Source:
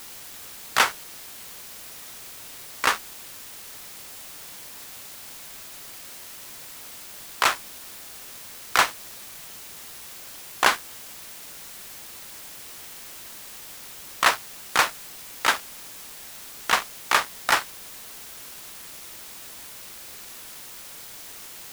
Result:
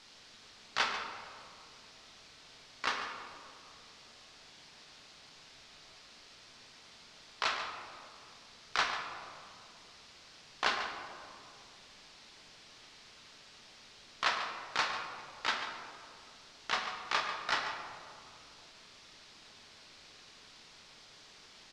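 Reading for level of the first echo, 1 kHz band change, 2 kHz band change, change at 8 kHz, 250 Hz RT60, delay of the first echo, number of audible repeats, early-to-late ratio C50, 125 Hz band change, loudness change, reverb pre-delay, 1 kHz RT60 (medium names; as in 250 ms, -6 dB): -10.5 dB, -10.5 dB, -10.5 dB, -18.0 dB, 2.9 s, 143 ms, 1, 3.5 dB, -10.5 dB, -7.0 dB, 5 ms, 2.3 s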